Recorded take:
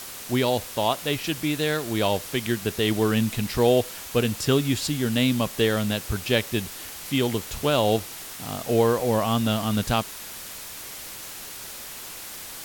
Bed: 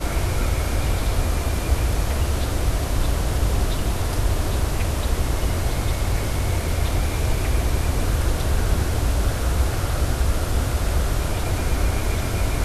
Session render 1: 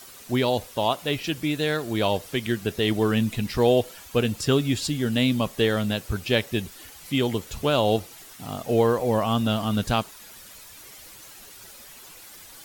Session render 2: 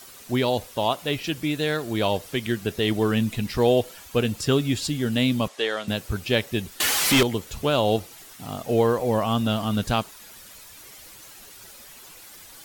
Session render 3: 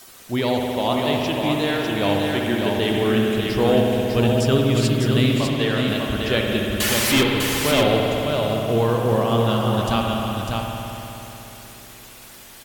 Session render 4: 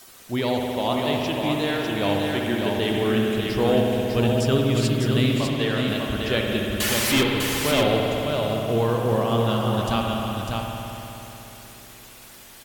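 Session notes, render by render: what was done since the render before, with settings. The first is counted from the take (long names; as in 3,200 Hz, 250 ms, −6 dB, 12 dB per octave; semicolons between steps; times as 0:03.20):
broadband denoise 10 dB, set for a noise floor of −39 dBFS
0:05.48–0:05.88: band-pass filter 510–7,700 Hz; 0:06.80–0:07.23: mid-hump overdrive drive 36 dB, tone 7,800 Hz, clips at −11 dBFS
single-tap delay 600 ms −4.5 dB; spring reverb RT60 3.6 s, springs 60 ms, chirp 30 ms, DRR 0 dB
level −2.5 dB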